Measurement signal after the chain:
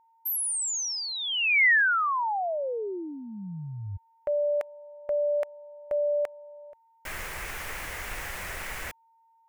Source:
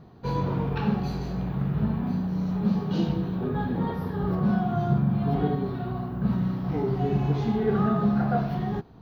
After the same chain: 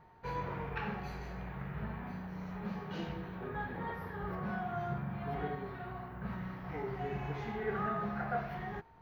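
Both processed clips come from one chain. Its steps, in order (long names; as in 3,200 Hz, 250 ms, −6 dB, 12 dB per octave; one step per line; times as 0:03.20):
octave-band graphic EQ 125/250/2,000/4,000 Hz −6/−10/+11/−7 dB
steady tone 910 Hz −53 dBFS
level −8 dB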